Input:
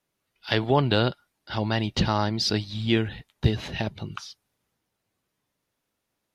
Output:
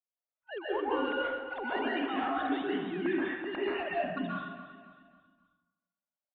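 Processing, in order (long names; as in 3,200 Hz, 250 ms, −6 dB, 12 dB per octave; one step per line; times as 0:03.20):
three sine waves on the formant tracks
noise gate −39 dBFS, range −21 dB
reversed playback
downward compressor 20 to 1, threshold −32 dBFS, peak gain reduction 21 dB
reversed playback
mid-hump overdrive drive 11 dB, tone 1,200 Hz, clips at −22.5 dBFS
low-pass that shuts in the quiet parts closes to 1,300 Hz, open at −36 dBFS
on a send: repeating echo 271 ms, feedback 43%, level −13 dB
on the sum: dense smooth reverb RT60 1.1 s, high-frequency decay 0.55×, pre-delay 115 ms, DRR −6 dB
level −3.5 dB
AC-3 32 kbit/s 32,000 Hz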